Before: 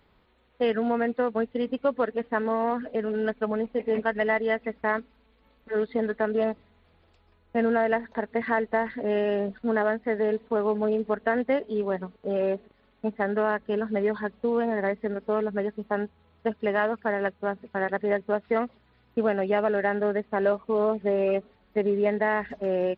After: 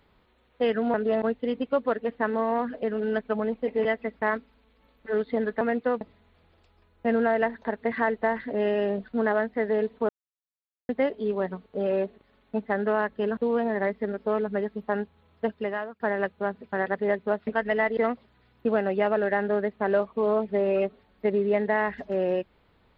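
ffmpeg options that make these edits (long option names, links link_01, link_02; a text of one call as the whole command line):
ffmpeg -i in.wav -filter_complex "[0:a]asplit=12[link_01][link_02][link_03][link_04][link_05][link_06][link_07][link_08][link_09][link_10][link_11][link_12];[link_01]atrim=end=0.942[link_13];[link_02]atrim=start=6.228:end=6.512[link_14];[link_03]atrim=start=1.338:end=3.972[link_15];[link_04]atrim=start=4.468:end=6.232[link_16];[link_05]atrim=start=0.938:end=1.342[link_17];[link_06]atrim=start=6.508:end=10.59,asetpts=PTS-STARTPTS,afade=type=out:start_time=4.078:duration=0.004:curve=hsin[link_18];[link_07]atrim=start=10.59:end=11.39,asetpts=PTS-STARTPTS,volume=0[link_19];[link_08]atrim=start=11.39:end=13.872,asetpts=PTS-STARTPTS,afade=type=in:duration=0.004:curve=hsin[link_20];[link_09]atrim=start=14.388:end=17.02,asetpts=PTS-STARTPTS,afade=type=out:start_time=2.082:duration=0.55:silence=0.0891251[link_21];[link_10]atrim=start=17.02:end=18.492,asetpts=PTS-STARTPTS,afade=type=in:duration=0.004:curve=hsin:silence=0.0891251[link_22];[link_11]atrim=start=3.968:end=4.472[link_23];[link_12]atrim=start=18.488[link_24];[link_13][link_14]acrossfade=duration=0.004:curve1=hsin:curve2=hsin[link_25];[link_25][link_15]acrossfade=duration=0.004:curve1=hsin:curve2=hsin[link_26];[link_26][link_16]acrossfade=duration=0.004:curve1=hsin:curve2=hsin[link_27];[link_27][link_17]acrossfade=duration=0.004:curve1=hsin:curve2=hsin[link_28];[link_18][link_19][link_20]concat=n=3:v=0:a=1[link_29];[link_28][link_29]acrossfade=duration=0.004:curve1=hsin:curve2=hsin[link_30];[link_21][link_22]concat=n=2:v=0:a=1[link_31];[link_30][link_31]acrossfade=duration=0.004:curve1=hsin:curve2=hsin[link_32];[link_32][link_23]acrossfade=duration=0.004:curve1=hsin:curve2=hsin[link_33];[link_33][link_24]acrossfade=duration=0.004:curve1=hsin:curve2=hsin" out.wav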